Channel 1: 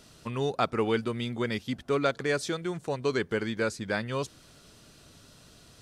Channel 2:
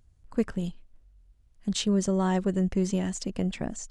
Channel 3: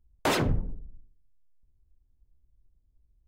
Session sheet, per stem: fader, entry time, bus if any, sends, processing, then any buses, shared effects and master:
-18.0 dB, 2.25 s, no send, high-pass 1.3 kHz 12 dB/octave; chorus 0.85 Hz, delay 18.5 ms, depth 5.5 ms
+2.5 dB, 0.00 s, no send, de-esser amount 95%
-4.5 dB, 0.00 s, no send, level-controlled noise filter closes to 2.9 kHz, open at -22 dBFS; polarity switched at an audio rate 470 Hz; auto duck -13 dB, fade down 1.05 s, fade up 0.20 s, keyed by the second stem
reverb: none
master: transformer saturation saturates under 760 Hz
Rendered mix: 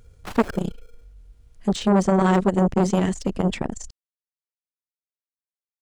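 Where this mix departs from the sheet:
stem 1: muted; stem 2 +2.5 dB -> +10.5 dB

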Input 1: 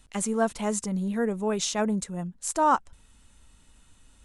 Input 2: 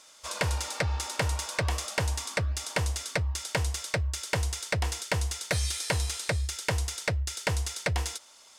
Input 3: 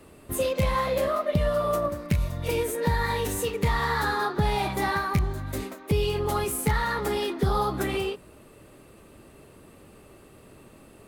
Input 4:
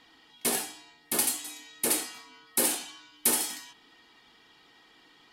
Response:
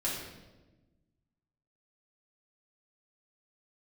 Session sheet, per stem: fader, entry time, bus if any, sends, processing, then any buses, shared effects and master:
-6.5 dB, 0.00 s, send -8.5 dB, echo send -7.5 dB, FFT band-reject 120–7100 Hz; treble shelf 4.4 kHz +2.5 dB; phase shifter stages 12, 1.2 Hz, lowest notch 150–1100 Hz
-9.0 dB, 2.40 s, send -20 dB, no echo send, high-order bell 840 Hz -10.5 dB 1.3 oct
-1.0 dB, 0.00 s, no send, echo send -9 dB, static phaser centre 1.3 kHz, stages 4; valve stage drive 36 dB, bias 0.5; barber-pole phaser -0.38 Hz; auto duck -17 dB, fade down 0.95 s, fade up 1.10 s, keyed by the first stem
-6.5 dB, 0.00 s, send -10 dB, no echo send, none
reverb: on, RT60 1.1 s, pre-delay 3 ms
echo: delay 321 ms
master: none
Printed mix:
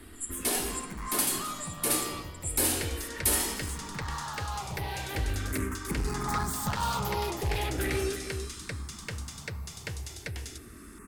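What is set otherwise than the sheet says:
stem 3 -1.0 dB -> +10.5 dB; stem 4: send -10 dB -> -2 dB

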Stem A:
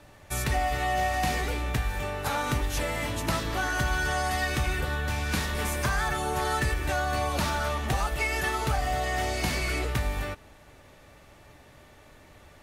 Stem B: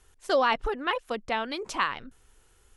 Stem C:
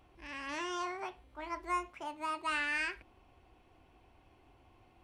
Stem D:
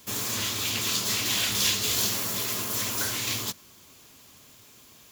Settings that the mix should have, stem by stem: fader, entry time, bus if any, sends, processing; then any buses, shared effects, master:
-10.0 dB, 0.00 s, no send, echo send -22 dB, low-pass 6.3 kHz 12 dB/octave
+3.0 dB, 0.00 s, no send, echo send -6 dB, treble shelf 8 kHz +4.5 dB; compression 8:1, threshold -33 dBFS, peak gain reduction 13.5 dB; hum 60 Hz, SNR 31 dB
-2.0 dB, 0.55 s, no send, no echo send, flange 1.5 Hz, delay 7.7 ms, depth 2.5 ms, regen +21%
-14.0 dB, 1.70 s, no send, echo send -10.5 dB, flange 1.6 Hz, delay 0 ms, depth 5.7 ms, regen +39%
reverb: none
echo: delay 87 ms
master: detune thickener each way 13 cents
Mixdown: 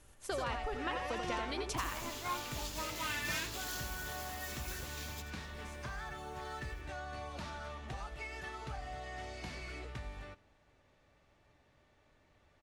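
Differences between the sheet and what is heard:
stem A -10.0 dB -> -16.0 dB; stem B +3.0 dB -> -3.0 dB; master: missing detune thickener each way 13 cents

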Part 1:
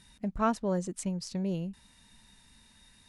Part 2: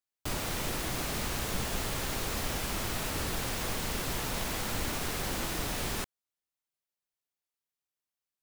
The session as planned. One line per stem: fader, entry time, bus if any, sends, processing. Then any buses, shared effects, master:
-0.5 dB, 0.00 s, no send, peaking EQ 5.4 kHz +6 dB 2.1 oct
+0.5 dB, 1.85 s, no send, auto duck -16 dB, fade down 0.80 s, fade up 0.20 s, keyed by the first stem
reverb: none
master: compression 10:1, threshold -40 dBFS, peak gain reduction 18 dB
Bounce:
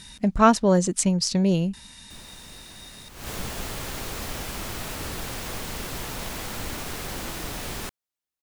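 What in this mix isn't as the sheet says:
stem 1 -0.5 dB -> +11.0 dB; master: missing compression 10:1, threshold -40 dBFS, peak gain reduction 18 dB

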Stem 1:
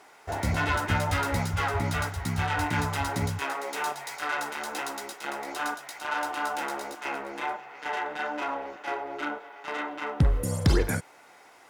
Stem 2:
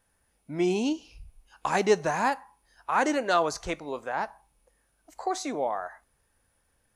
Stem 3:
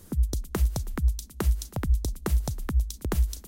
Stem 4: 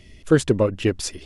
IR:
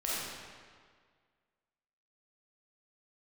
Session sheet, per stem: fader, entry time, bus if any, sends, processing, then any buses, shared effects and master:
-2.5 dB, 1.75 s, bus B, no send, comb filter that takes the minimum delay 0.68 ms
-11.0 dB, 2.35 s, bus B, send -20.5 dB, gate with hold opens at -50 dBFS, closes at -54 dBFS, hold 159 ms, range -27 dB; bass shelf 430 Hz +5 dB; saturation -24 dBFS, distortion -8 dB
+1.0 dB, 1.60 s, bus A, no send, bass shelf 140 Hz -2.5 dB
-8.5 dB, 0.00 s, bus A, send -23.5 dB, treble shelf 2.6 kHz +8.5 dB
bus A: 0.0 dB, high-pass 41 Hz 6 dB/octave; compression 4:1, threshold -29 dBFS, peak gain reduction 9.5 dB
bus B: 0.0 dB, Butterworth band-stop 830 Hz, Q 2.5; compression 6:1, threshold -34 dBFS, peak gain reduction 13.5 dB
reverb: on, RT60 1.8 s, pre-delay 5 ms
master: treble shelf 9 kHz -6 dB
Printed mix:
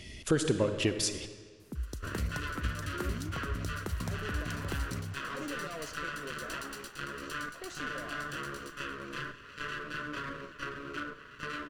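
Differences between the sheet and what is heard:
stem 3 +1.0 dB -> -8.5 dB; stem 4 -8.5 dB -> +0.5 dB

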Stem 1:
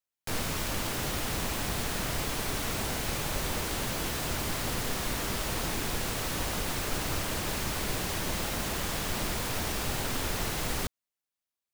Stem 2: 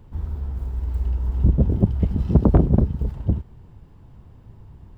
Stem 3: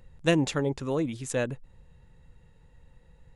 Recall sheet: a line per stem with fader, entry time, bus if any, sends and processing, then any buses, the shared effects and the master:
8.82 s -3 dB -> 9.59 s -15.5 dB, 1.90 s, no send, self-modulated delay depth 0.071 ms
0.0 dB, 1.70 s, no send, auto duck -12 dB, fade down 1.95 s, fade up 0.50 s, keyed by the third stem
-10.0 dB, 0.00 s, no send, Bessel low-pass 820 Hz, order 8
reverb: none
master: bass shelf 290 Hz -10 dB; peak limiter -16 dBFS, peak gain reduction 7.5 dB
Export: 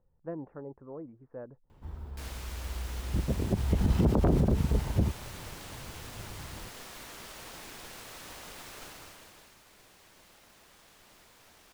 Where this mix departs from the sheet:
stem 1 -3.0 dB -> -10.5 dB; stem 2 0.0 dB -> +7.5 dB

